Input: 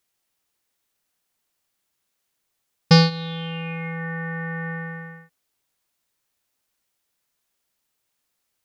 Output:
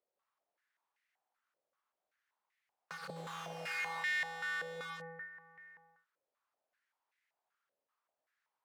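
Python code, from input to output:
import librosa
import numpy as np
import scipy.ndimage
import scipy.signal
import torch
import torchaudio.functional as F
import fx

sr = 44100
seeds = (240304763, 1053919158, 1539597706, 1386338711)

y = 10.0 ** (-14.5 / 20.0) * np.tanh(x / 10.0 ** (-14.5 / 20.0))
y = fx.dynamic_eq(y, sr, hz=890.0, q=1.7, threshold_db=-41.0, ratio=4.0, max_db=-5)
y = y + 10.0 ** (-20.0 / 20.0) * np.pad(y, (int(764 * sr / 1000.0), 0))[:len(y)]
y = (np.mod(10.0 ** (28.5 / 20.0) * y + 1.0, 2.0) - 1.0) / 10.0 ** (28.5 / 20.0)
y = fx.quant_dither(y, sr, seeds[0], bits=6, dither='triangular', at=(3.16, 4.03))
y = fx.filter_held_bandpass(y, sr, hz=5.2, low_hz=540.0, high_hz=2000.0)
y = y * librosa.db_to_amplitude(5.0)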